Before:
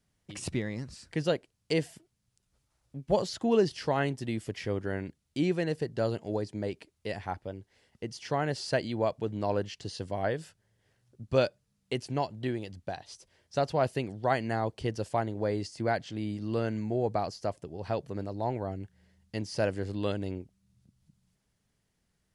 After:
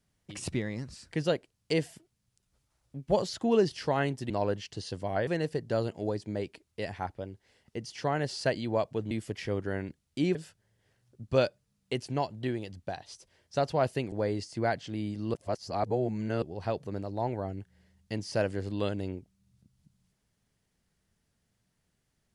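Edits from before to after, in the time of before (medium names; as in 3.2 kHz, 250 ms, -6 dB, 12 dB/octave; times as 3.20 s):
4.30–5.54 s: swap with 9.38–10.35 s
14.12–15.35 s: delete
16.57–17.65 s: reverse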